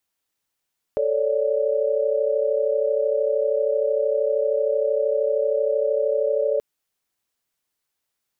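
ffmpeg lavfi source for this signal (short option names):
-f lavfi -i "aevalsrc='0.0708*(sin(2*PI*440*t)+sin(2*PI*554.37*t)+sin(2*PI*587.33*t))':d=5.63:s=44100"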